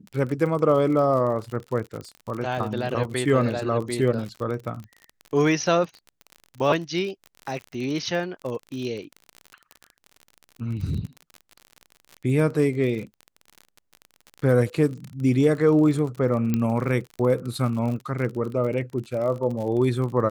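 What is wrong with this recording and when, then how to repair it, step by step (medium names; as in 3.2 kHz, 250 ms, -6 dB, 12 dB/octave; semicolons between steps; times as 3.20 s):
crackle 47 per s -31 dBFS
16.54 s: pop -11 dBFS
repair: de-click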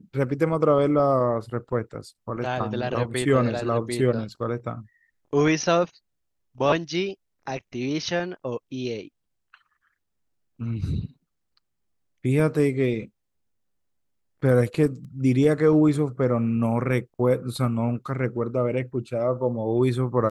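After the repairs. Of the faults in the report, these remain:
nothing left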